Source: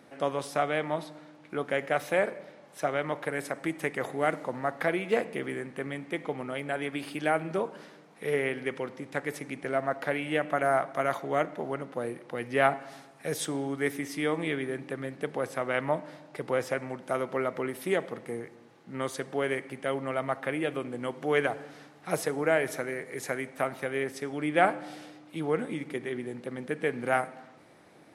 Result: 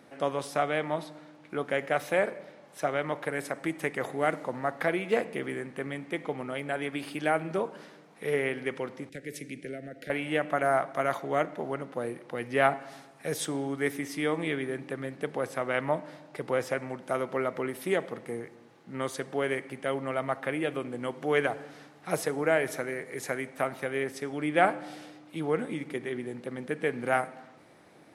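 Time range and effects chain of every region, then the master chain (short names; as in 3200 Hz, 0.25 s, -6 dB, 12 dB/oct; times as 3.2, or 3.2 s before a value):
9.09–10.1 compressor 2:1, threshold -33 dBFS + Butterworth band-stop 1000 Hz, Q 0.67 + three-band expander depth 40%
whole clip: dry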